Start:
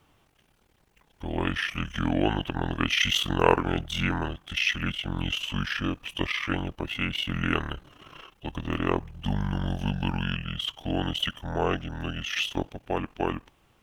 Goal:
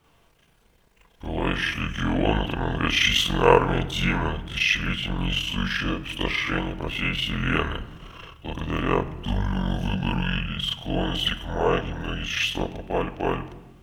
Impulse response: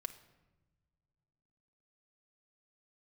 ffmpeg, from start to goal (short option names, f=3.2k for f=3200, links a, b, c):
-filter_complex "[0:a]asplit=2[a][b];[1:a]atrim=start_sample=2205,adelay=38[c];[b][c]afir=irnorm=-1:irlink=0,volume=6.5dB[d];[a][d]amix=inputs=2:normalize=0,volume=-1.5dB"